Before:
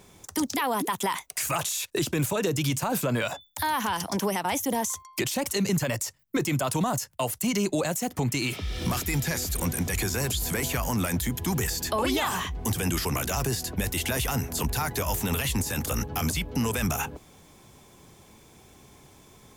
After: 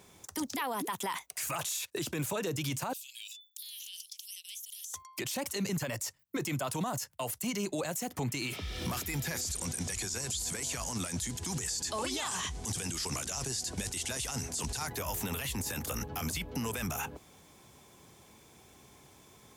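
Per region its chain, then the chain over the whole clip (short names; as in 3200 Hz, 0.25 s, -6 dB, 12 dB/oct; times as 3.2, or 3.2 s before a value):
2.93–4.94 steep high-pass 2800 Hz 48 dB/oct + compressor, threshold -37 dBFS
9.41–14.87 block floating point 5-bit + LPF 8800 Hz 24 dB/oct + tone controls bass +1 dB, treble +13 dB
whole clip: HPF 47 Hz; low shelf 410 Hz -3.5 dB; limiter -22.5 dBFS; gain -3 dB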